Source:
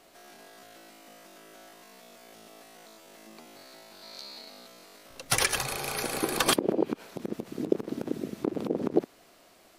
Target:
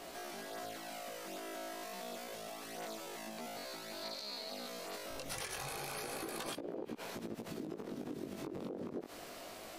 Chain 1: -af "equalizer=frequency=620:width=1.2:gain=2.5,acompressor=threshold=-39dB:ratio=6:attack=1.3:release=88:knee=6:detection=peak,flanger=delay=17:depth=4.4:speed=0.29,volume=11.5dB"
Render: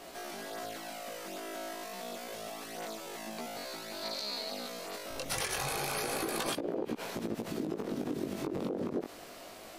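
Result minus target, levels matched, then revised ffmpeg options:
downward compressor: peak gain reduction −8 dB
-af "equalizer=frequency=620:width=1.2:gain=2.5,acompressor=threshold=-48.5dB:ratio=6:attack=1.3:release=88:knee=6:detection=peak,flanger=delay=17:depth=4.4:speed=0.29,volume=11.5dB"

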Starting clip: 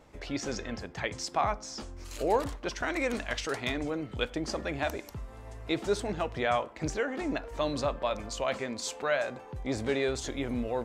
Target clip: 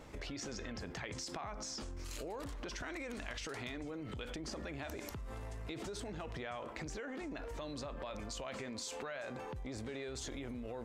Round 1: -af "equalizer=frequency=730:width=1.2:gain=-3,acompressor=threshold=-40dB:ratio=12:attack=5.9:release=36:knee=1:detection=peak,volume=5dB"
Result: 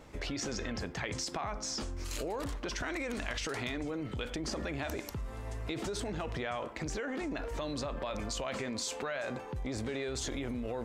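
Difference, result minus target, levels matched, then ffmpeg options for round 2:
downward compressor: peak gain reduction −7 dB
-af "equalizer=frequency=730:width=1.2:gain=-3,acompressor=threshold=-47.5dB:ratio=12:attack=5.9:release=36:knee=1:detection=peak,volume=5dB"

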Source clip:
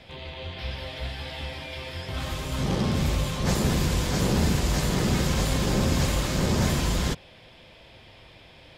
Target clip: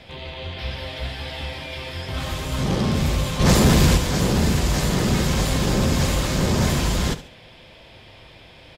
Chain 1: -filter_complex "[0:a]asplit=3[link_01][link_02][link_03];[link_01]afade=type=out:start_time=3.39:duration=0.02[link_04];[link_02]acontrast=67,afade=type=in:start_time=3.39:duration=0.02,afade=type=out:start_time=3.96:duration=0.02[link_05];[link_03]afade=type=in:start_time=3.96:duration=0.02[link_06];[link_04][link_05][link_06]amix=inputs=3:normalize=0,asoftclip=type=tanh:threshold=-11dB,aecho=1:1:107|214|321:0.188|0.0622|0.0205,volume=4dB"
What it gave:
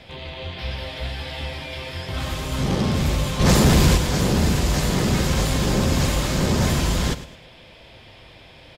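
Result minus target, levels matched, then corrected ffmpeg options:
echo 37 ms late
-filter_complex "[0:a]asplit=3[link_01][link_02][link_03];[link_01]afade=type=out:start_time=3.39:duration=0.02[link_04];[link_02]acontrast=67,afade=type=in:start_time=3.39:duration=0.02,afade=type=out:start_time=3.96:duration=0.02[link_05];[link_03]afade=type=in:start_time=3.96:duration=0.02[link_06];[link_04][link_05][link_06]amix=inputs=3:normalize=0,asoftclip=type=tanh:threshold=-11dB,aecho=1:1:70|140|210:0.188|0.0622|0.0205,volume=4dB"

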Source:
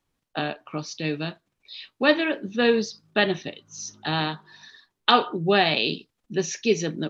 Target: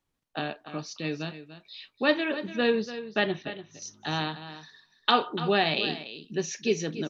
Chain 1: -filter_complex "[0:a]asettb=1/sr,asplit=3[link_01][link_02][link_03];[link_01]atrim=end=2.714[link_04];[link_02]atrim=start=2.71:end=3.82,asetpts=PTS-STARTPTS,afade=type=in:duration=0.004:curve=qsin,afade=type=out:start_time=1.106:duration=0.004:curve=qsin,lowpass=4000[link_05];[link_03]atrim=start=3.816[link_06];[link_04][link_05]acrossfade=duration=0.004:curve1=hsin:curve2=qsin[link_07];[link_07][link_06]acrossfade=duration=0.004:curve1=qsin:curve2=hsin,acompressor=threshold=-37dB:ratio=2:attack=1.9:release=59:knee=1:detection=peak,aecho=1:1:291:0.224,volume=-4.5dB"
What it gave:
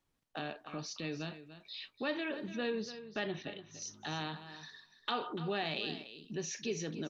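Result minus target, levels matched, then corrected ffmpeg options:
downward compressor: peak gain reduction +14.5 dB
-filter_complex "[0:a]asettb=1/sr,asplit=3[link_01][link_02][link_03];[link_01]atrim=end=2.714[link_04];[link_02]atrim=start=2.71:end=3.82,asetpts=PTS-STARTPTS,afade=type=in:duration=0.004:curve=qsin,afade=type=out:start_time=1.106:duration=0.004:curve=qsin,lowpass=4000[link_05];[link_03]atrim=start=3.816[link_06];[link_04][link_05]acrossfade=duration=0.004:curve1=hsin:curve2=qsin[link_07];[link_07][link_06]acrossfade=duration=0.004:curve1=qsin:curve2=hsin,aecho=1:1:291:0.224,volume=-4.5dB"

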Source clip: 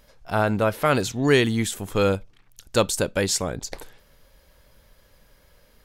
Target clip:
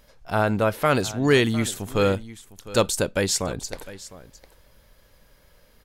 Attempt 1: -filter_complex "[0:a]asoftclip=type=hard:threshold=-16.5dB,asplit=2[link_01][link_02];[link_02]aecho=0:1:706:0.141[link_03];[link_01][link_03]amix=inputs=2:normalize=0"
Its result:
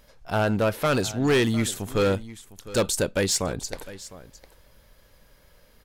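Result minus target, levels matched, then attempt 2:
hard clipping: distortion +22 dB
-filter_complex "[0:a]asoftclip=type=hard:threshold=-8dB,asplit=2[link_01][link_02];[link_02]aecho=0:1:706:0.141[link_03];[link_01][link_03]amix=inputs=2:normalize=0"

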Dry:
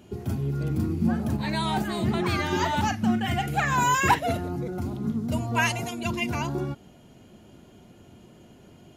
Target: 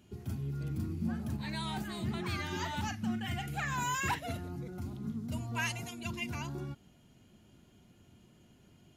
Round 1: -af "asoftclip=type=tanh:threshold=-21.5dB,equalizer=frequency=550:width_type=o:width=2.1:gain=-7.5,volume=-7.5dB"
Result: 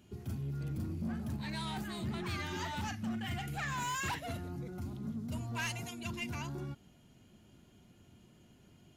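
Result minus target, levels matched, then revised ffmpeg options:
soft clipping: distortion +12 dB
-af "asoftclip=type=tanh:threshold=-12dB,equalizer=frequency=550:width_type=o:width=2.1:gain=-7.5,volume=-7.5dB"

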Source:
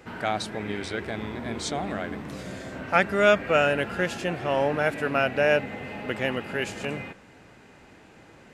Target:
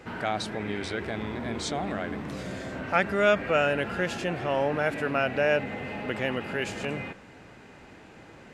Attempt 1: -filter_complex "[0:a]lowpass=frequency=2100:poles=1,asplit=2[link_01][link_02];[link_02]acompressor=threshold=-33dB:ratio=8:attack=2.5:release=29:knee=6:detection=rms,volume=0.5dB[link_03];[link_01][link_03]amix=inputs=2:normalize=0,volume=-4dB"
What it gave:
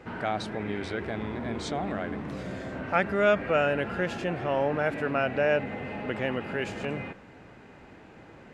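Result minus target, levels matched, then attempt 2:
8,000 Hz band −6.0 dB
-filter_complex "[0:a]lowpass=frequency=7000:poles=1,asplit=2[link_01][link_02];[link_02]acompressor=threshold=-33dB:ratio=8:attack=2.5:release=29:knee=6:detection=rms,volume=0.5dB[link_03];[link_01][link_03]amix=inputs=2:normalize=0,volume=-4dB"

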